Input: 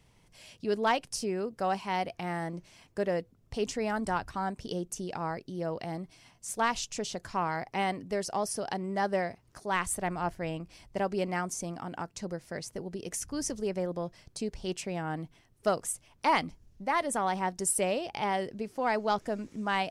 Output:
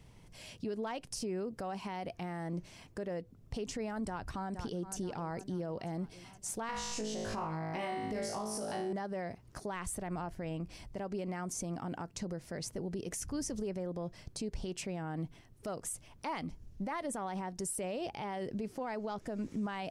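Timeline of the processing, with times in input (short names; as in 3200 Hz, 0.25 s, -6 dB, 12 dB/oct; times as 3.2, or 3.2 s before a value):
4.04–4.96 echo throw 0.47 s, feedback 55%, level -17.5 dB
6.67–8.93 flutter echo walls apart 3.2 m, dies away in 0.63 s
whole clip: low shelf 500 Hz +6 dB; compressor, threshold -31 dBFS; limiter -30.5 dBFS; gain +1 dB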